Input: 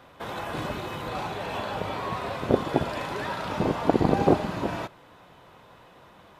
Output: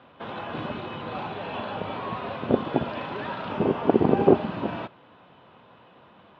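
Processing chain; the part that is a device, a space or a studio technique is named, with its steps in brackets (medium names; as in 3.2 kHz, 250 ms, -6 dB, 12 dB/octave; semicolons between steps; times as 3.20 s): 3.53–4.36 s: graphic EQ with 31 bands 400 Hz +8 dB, 4 kHz -6 dB, 10 kHz +11 dB; guitar cabinet (cabinet simulation 92–3500 Hz, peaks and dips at 230 Hz +5 dB, 2 kHz -4 dB, 2.9 kHz +3 dB); trim -1 dB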